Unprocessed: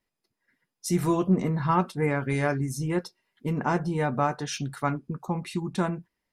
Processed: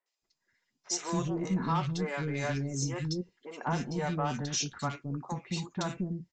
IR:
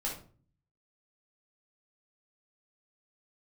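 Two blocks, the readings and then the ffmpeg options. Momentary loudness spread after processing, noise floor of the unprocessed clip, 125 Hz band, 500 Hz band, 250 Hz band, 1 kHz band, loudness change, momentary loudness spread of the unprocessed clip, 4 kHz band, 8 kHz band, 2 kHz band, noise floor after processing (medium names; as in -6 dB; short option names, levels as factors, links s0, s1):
6 LU, -85 dBFS, -5.0 dB, -7.5 dB, -6.5 dB, -6.5 dB, -5.5 dB, 8 LU, +2.5 dB, +3.0 dB, -6.0 dB, -85 dBFS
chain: -filter_complex "[0:a]aemphasis=mode=production:type=75fm,aresample=16000,asoftclip=type=tanh:threshold=0.0944,aresample=44100,acrossover=split=400|1900[s0][s1][s2];[s2]adelay=60[s3];[s0]adelay=220[s4];[s4][s1][s3]amix=inputs=3:normalize=0,volume=0.75"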